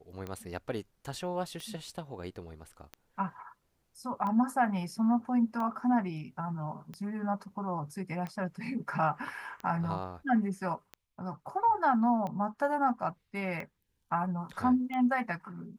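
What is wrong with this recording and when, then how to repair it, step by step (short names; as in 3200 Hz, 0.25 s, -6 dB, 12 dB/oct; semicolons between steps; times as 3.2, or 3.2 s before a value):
tick 45 rpm -26 dBFS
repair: de-click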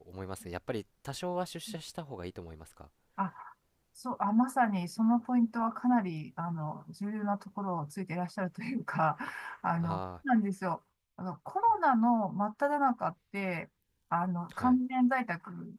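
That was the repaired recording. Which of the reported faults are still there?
none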